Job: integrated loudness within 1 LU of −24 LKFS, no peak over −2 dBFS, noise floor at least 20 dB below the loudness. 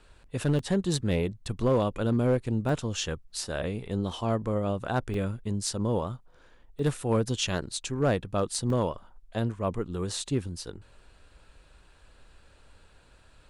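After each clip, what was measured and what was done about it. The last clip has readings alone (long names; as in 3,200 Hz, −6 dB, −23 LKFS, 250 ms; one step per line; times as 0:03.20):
share of clipped samples 0.4%; peaks flattened at −17.5 dBFS; number of dropouts 5; longest dropout 2.2 ms; integrated loudness −29.5 LKFS; sample peak −17.5 dBFS; target loudness −24.0 LKFS
→ clipped peaks rebuilt −17.5 dBFS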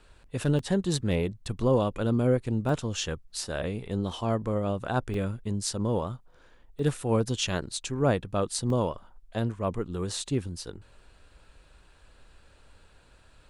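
share of clipped samples 0.0%; number of dropouts 5; longest dropout 2.2 ms
→ repair the gap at 0:00.59/0:02.69/0:05.14/0:06.79/0:08.70, 2.2 ms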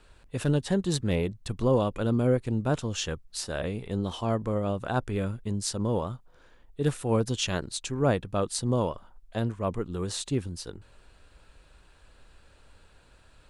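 number of dropouts 0; integrated loudness −29.0 LKFS; sample peak −12.0 dBFS; target loudness −24.0 LKFS
→ level +5 dB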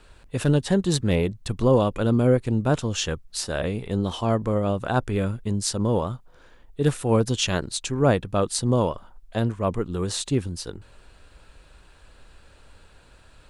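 integrated loudness −24.0 LKFS; sample peak −7.0 dBFS; background noise floor −53 dBFS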